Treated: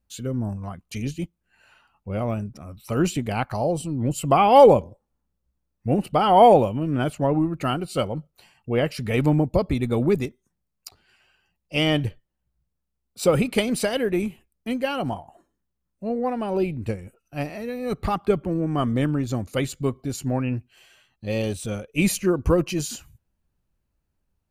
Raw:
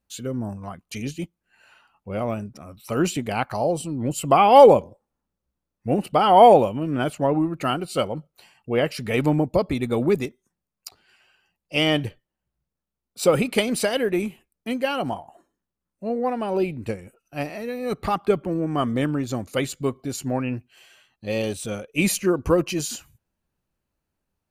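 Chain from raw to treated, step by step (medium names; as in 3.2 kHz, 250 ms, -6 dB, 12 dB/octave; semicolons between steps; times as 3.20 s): bass shelf 130 Hz +11.5 dB; trim -2 dB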